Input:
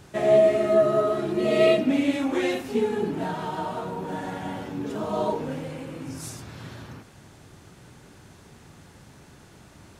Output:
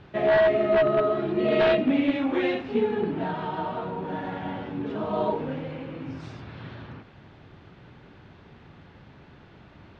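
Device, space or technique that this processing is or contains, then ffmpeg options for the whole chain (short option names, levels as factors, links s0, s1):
synthesiser wavefolder: -af "aeval=exprs='0.188*(abs(mod(val(0)/0.188+3,4)-2)-1)':c=same,lowpass=f=3600:w=0.5412,lowpass=f=3600:w=1.3066"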